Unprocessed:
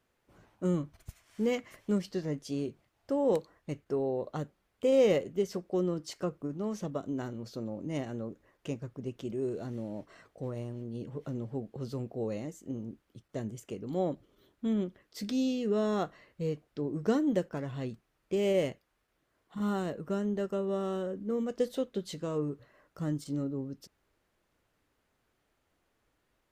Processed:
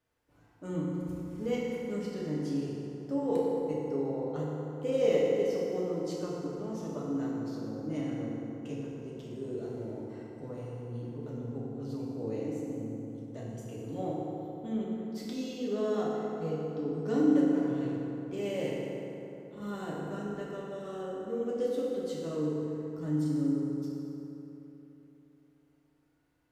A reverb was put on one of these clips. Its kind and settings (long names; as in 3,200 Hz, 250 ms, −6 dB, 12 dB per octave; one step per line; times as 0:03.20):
feedback delay network reverb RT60 3.5 s, high-frequency decay 0.5×, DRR −6 dB
level −8.5 dB